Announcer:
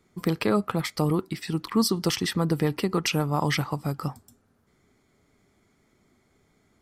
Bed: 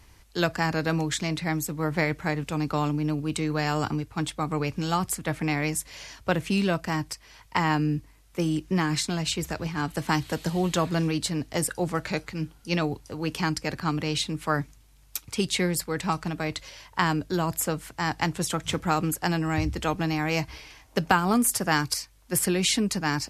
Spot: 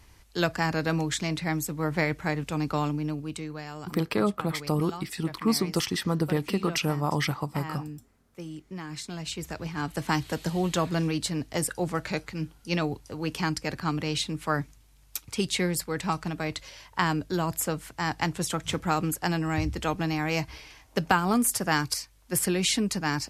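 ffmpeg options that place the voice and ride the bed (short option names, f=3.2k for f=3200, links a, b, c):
-filter_complex "[0:a]adelay=3700,volume=-2dB[a];[1:a]volume=11dB,afade=t=out:st=2.75:d=0.91:silence=0.237137,afade=t=in:st=8.83:d=1.18:silence=0.251189[b];[a][b]amix=inputs=2:normalize=0"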